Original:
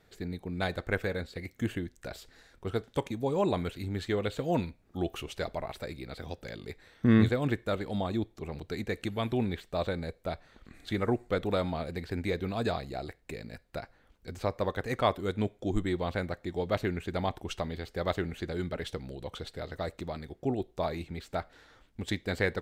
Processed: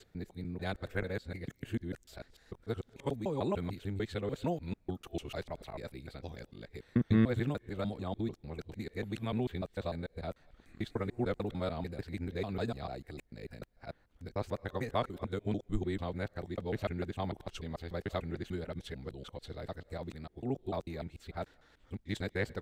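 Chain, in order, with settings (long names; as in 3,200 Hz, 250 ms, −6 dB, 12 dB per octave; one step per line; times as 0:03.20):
reversed piece by piece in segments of 148 ms
low-shelf EQ 320 Hz +4.5 dB
level −7 dB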